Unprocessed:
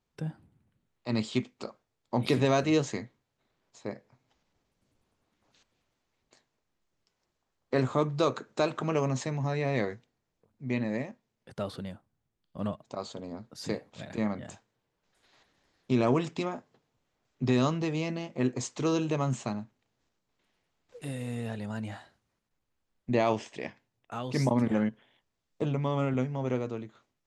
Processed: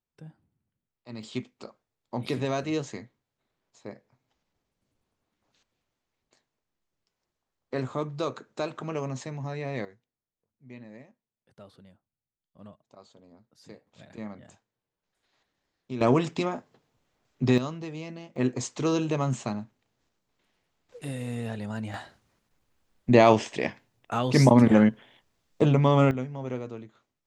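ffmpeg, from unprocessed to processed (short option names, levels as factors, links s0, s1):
-af "asetnsamples=n=441:p=0,asendcmd='1.23 volume volume -4dB;9.85 volume volume -15dB;13.87 volume volume -8.5dB;16.01 volume volume 4dB;17.58 volume volume -6.5dB;18.36 volume volume 2dB;21.94 volume volume 9dB;26.11 volume volume -3dB',volume=0.282"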